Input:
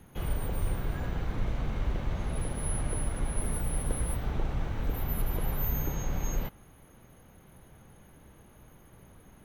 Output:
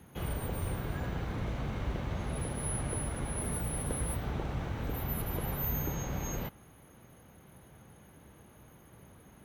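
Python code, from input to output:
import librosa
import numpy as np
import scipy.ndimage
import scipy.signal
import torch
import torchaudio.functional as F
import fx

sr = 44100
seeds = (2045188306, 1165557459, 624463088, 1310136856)

y = scipy.signal.sosfilt(scipy.signal.butter(2, 64.0, 'highpass', fs=sr, output='sos'), x)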